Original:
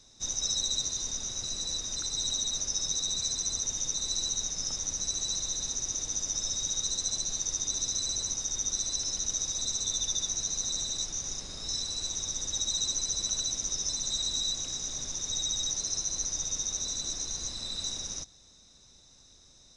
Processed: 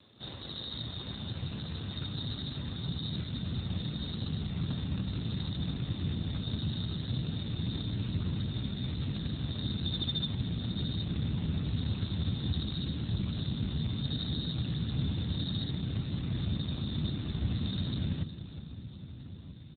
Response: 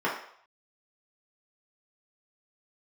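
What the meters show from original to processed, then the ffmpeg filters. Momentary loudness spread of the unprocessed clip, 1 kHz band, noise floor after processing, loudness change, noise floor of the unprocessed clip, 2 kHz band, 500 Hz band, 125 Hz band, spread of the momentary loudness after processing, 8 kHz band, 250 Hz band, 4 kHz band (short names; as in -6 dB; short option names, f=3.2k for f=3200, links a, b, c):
5 LU, -0.5 dB, -46 dBFS, -5.0 dB, -58 dBFS, +1.0 dB, +3.0 dB, +18.0 dB, 6 LU, under -40 dB, +15.5 dB, -7.0 dB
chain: -filter_complex "[0:a]asplit=2[a][b];[b]adelay=1283,volume=-15dB,highshelf=f=4k:g=-28.9[c];[a][c]amix=inputs=2:normalize=0,asplit=2[d][e];[e]alimiter=level_in=0.5dB:limit=-24dB:level=0:latency=1:release=58,volume=-0.5dB,volume=-2dB[f];[d][f]amix=inputs=2:normalize=0,crystalizer=i=0.5:c=0,asubboost=boost=10:cutoff=160,asplit=2[g][h];[h]aecho=0:1:367|734|1101|1468|1835|2202:0.2|0.112|0.0626|0.035|0.0196|0.011[i];[g][i]amix=inputs=2:normalize=0,volume=3dB" -ar 8000 -c:a libopencore_amrnb -b:a 7400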